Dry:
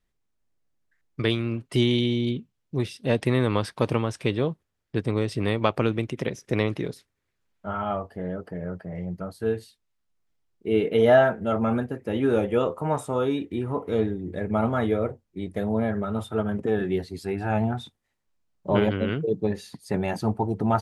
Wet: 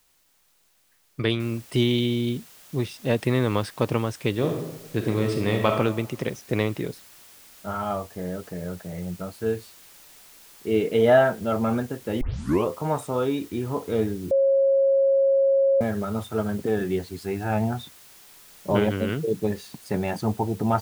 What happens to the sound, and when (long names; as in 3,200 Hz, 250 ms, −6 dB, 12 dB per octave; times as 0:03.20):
0:01.40: noise floor change −65 dB −50 dB
0:04.32–0:05.68: thrown reverb, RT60 1 s, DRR 2.5 dB
0:12.21: tape start 0.47 s
0:14.31–0:15.81: beep over 545 Hz −16 dBFS